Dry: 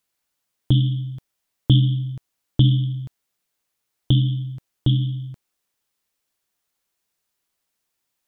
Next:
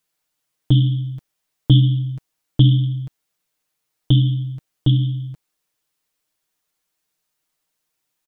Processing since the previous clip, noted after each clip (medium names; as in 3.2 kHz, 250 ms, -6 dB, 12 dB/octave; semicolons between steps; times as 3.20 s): comb 6.5 ms, depth 59%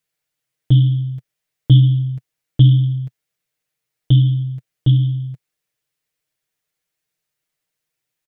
graphic EQ 125/250/500/1000/2000 Hz +8/-3/+4/-4/+5 dB; trim -4.5 dB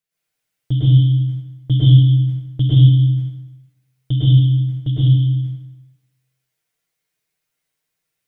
plate-style reverb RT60 1 s, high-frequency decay 0.85×, pre-delay 95 ms, DRR -9.5 dB; trim -7 dB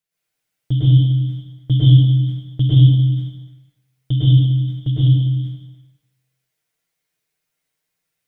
repeats whose band climbs or falls 100 ms, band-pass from 250 Hz, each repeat 1.4 oct, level -5 dB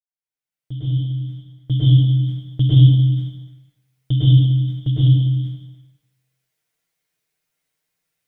fade-in on the opening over 2.61 s